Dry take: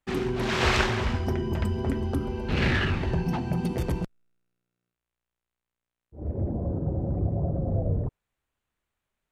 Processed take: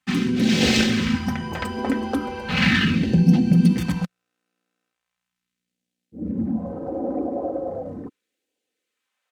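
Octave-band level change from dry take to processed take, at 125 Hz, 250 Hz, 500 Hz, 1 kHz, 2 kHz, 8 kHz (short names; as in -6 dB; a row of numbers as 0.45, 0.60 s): +3.0, +10.5, +2.5, +1.5, +5.0, +9.0 dB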